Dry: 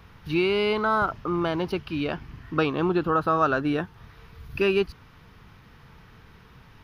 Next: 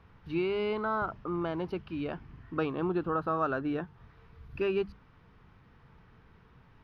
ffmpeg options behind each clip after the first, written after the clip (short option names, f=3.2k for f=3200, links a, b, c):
-af "lowpass=f=1.6k:p=1,bandreject=f=50:t=h:w=6,bandreject=f=100:t=h:w=6,bandreject=f=150:t=h:w=6,bandreject=f=200:t=h:w=6,volume=-6.5dB"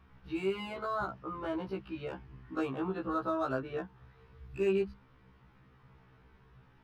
-filter_complex "[0:a]acrossover=split=290|1400[a][b][c];[c]asoftclip=type=hard:threshold=-38.5dB[d];[a][b][d]amix=inputs=3:normalize=0,afftfilt=real='re*1.73*eq(mod(b,3),0)':imag='im*1.73*eq(mod(b,3),0)':win_size=2048:overlap=0.75"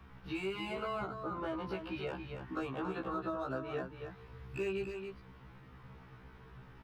-filter_complex "[0:a]acrossover=split=110|580[a][b][c];[a]acompressor=threshold=-60dB:ratio=4[d];[b]acompressor=threshold=-47dB:ratio=4[e];[c]acompressor=threshold=-47dB:ratio=4[f];[d][e][f]amix=inputs=3:normalize=0,asplit=2[g][h];[h]aecho=0:1:278:0.447[i];[g][i]amix=inputs=2:normalize=0,volume=5.5dB"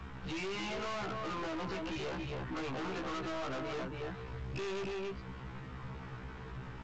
-af "aeval=exprs='(tanh(251*val(0)+0.3)-tanh(0.3))/251':c=same,volume=11dB" -ar 16000 -c:a pcm_alaw